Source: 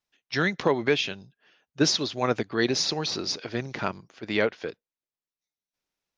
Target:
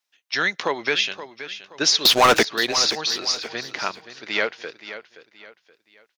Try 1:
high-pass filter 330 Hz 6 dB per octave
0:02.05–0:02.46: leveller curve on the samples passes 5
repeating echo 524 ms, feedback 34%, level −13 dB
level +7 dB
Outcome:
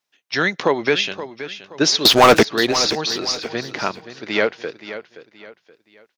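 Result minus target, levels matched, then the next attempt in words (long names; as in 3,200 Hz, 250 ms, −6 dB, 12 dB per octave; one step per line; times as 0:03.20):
250 Hz band +6.0 dB
high-pass filter 1,300 Hz 6 dB per octave
0:02.05–0:02.46: leveller curve on the samples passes 5
repeating echo 524 ms, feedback 34%, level −13 dB
level +7 dB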